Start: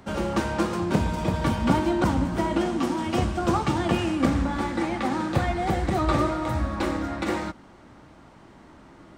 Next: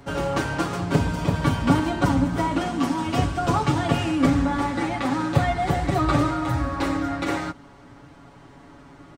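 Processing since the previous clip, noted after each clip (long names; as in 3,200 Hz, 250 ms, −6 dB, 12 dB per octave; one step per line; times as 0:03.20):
parametric band 71 Hz +12.5 dB 0.48 octaves
comb filter 7.1 ms, depth 84%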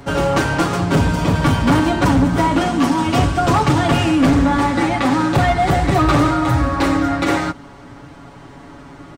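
hard clipping −18 dBFS, distortion −11 dB
level +8.5 dB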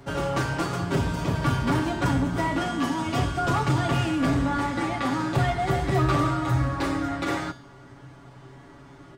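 tuned comb filter 130 Hz, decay 0.54 s, harmonics odd, mix 80%
level +2.5 dB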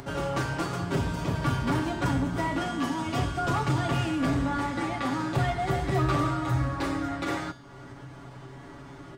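upward compression, threshold −33 dBFS
level −3 dB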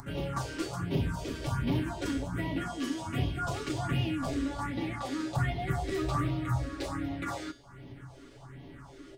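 all-pass phaser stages 4, 1.3 Hz, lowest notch 130–1,400 Hz
level −2 dB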